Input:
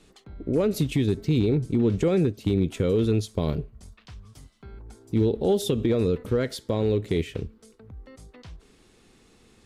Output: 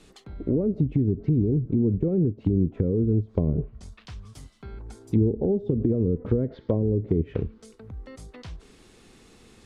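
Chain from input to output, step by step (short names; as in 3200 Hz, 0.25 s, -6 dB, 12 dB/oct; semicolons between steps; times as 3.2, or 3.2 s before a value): treble ducked by the level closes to 330 Hz, closed at -20.5 dBFS; in parallel at +1.5 dB: vocal rider; 6.49–7.03 on the sum: air absorption 230 m; gain -4.5 dB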